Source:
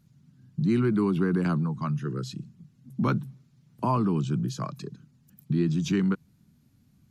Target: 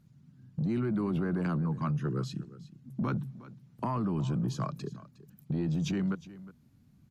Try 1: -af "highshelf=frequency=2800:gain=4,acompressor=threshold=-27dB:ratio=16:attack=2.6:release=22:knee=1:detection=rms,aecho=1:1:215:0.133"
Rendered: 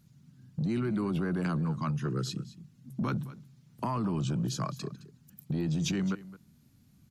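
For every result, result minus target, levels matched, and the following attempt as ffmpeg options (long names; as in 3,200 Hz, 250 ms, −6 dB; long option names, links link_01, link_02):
echo 146 ms early; 4,000 Hz band +6.0 dB
-af "highshelf=frequency=2800:gain=4,acompressor=threshold=-27dB:ratio=16:attack=2.6:release=22:knee=1:detection=rms,aecho=1:1:361:0.133"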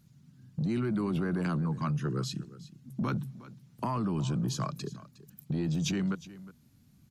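4,000 Hz band +6.0 dB
-af "highshelf=frequency=2800:gain=-6,acompressor=threshold=-27dB:ratio=16:attack=2.6:release=22:knee=1:detection=rms,aecho=1:1:361:0.133"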